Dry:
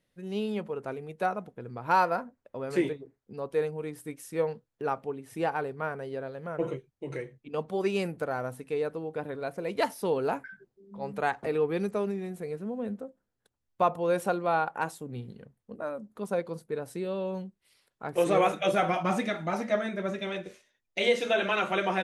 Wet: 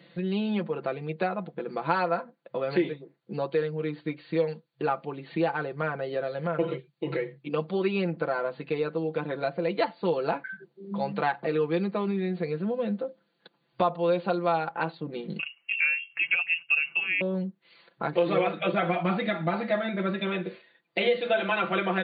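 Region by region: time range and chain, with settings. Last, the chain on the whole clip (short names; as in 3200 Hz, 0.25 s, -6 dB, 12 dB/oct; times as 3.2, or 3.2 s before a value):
15.39–17.21 HPF 89 Hz + small resonant body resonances 310/730 Hz, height 17 dB, ringing for 30 ms + inverted band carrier 3000 Hz
whole clip: FFT band-pass 130–4700 Hz; comb 5.9 ms, depth 72%; three-band squash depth 70%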